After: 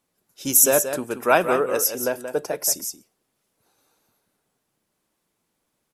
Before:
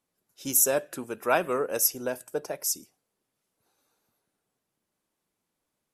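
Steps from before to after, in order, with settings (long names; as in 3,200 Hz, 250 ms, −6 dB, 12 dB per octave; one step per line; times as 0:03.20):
0:01.56–0:02.37: bass and treble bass −4 dB, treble −5 dB
single-tap delay 179 ms −9 dB
level +6.5 dB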